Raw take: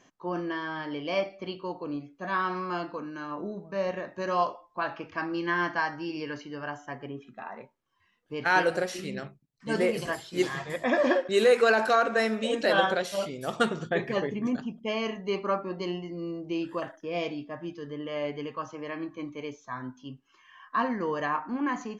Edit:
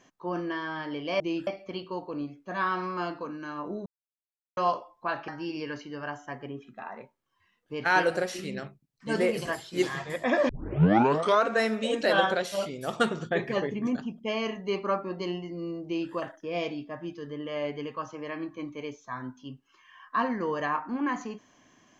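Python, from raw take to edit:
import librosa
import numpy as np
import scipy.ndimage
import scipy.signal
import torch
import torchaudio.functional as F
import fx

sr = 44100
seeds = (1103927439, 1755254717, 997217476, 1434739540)

y = fx.edit(x, sr, fx.silence(start_s=3.59, length_s=0.71),
    fx.cut(start_s=5.01, length_s=0.87),
    fx.tape_start(start_s=11.09, length_s=0.96),
    fx.duplicate(start_s=16.45, length_s=0.27, to_s=1.2), tone=tone)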